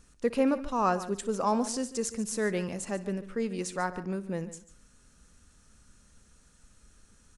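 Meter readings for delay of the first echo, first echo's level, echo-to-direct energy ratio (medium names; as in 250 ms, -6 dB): 61 ms, -18.5 dB, -13.0 dB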